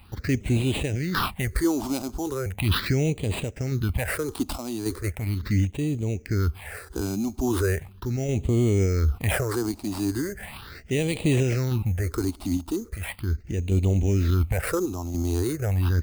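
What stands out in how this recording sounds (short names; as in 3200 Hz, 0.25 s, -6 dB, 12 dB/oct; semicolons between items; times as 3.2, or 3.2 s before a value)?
random-step tremolo; aliases and images of a low sample rate 6500 Hz, jitter 0%; phasing stages 6, 0.38 Hz, lowest notch 120–1500 Hz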